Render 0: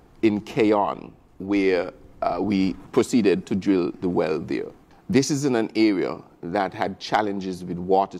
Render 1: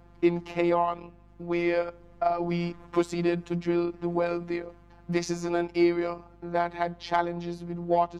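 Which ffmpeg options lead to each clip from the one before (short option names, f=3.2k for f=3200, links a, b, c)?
-filter_complex "[0:a]asplit=2[a][b];[b]highpass=f=720:p=1,volume=7dB,asoftclip=type=tanh:threshold=-6.5dB[c];[a][c]amix=inputs=2:normalize=0,lowpass=f=1.8k:p=1,volume=-6dB,afftfilt=real='hypot(re,im)*cos(PI*b)':imag='0':win_size=1024:overlap=0.75,aeval=exprs='val(0)+0.002*(sin(2*PI*50*n/s)+sin(2*PI*2*50*n/s)/2+sin(2*PI*3*50*n/s)/3+sin(2*PI*4*50*n/s)/4+sin(2*PI*5*50*n/s)/5)':c=same"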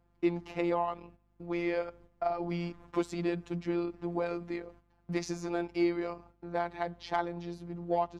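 -af "agate=range=-10dB:threshold=-48dB:ratio=16:detection=peak,volume=-6dB"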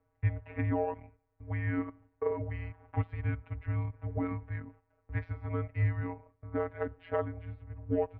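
-af "highpass=f=200:t=q:w=0.5412,highpass=f=200:t=q:w=1.307,lowpass=f=2.6k:t=q:w=0.5176,lowpass=f=2.6k:t=q:w=0.7071,lowpass=f=2.6k:t=q:w=1.932,afreqshift=-240"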